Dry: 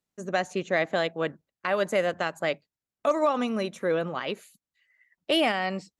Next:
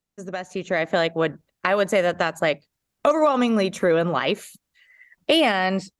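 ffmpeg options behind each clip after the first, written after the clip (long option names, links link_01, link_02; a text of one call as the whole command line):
ffmpeg -i in.wav -af "acompressor=threshold=-33dB:ratio=2,lowshelf=frequency=61:gain=9.5,dynaudnorm=framelen=490:gausssize=3:maxgain=12.5dB" out.wav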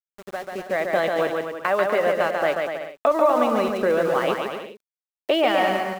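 ffmpeg -i in.wav -filter_complex "[0:a]bandpass=frequency=830:width_type=q:width=0.58:csg=0,aeval=exprs='val(0)*gte(abs(val(0)),0.0158)':channel_layout=same,asplit=2[link_01][link_02];[link_02]aecho=0:1:140|245|323.8|382.8|427.1:0.631|0.398|0.251|0.158|0.1[link_03];[link_01][link_03]amix=inputs=2:normalize=0" out.wav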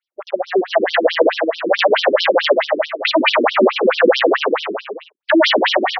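ffmpeg -i in.wav -af "aeval=exprs='0.501*sin(PI/2*4.47*val(0)/0.501)':channel_layout=same,aecho=1:1:349:0.335,afftfilt=real='re*between(b*sr/1024,290*pow(4300/290,0.5+0.5*sin(2*PI*4.6*pts/sr))/1.41,290*pow(4300/290,0.5+0.5*sin(2*PI*4.6*pts/sr))*1.41)':imag='im*between(b*sr/1024,290*pow(4300/290,0.5+0.5*sin(2*PI*4.6*pts/sr))/1.41,290*pow(4300/290,0.5+0.5*sin(2*PI*4.6*pts/sr))*1.41)':win_size=1024:overlap=0.75,volume=2.5dB" out.wav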